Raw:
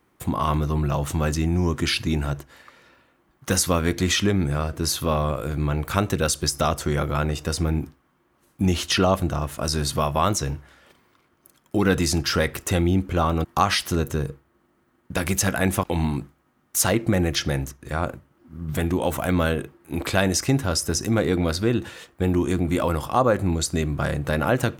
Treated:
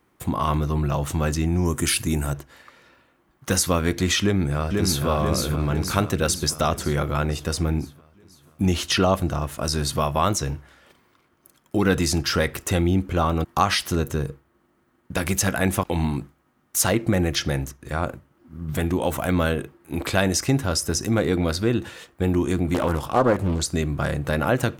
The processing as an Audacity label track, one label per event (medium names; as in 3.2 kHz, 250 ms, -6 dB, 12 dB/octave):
1.650000	2.340000	resonant high shelf 6.3 kHz +11.5 dB, Q 1.5
4.210000	5.060000	echo throw 490 ms, feedback 60%, level -3 dB
22.740000	23.700000	loudspeaker Doppler distortion depth 0.63 ms